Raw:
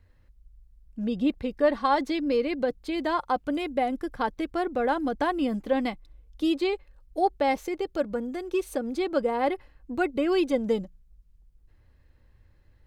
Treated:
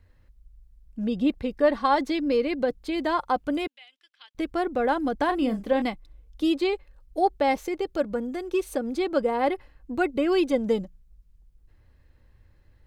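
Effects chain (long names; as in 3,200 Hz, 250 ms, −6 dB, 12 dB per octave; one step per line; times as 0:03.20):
0:03.67–0:04.35: four-pole ladder band-pass 3,400 Hz, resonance 55%
0:05.25–0:05.82: double-tracking delay 36 ms −9 dB
level +1.5 dB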